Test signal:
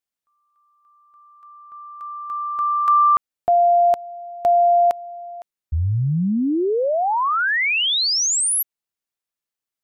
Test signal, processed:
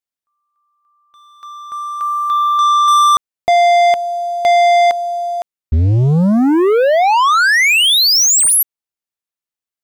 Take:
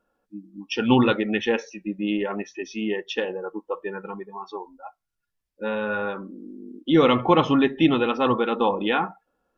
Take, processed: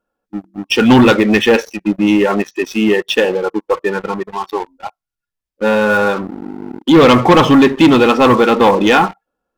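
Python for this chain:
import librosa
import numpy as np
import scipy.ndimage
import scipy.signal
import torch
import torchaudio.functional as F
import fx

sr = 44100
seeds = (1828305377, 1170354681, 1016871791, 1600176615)

y = fx.leveller(x, sr, passes=3)
y = F.gain(torch.from_numpy(y), 3.0).numpy()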